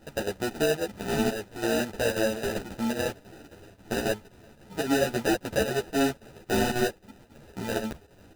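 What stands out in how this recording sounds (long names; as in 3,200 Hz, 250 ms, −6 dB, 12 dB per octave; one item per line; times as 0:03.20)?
aliases and images of a low sample rate 1,100 Hz, jitter 0%
chopped level 3.7 Hz, depth 60%, duty 80%
a shimmering, thickened sound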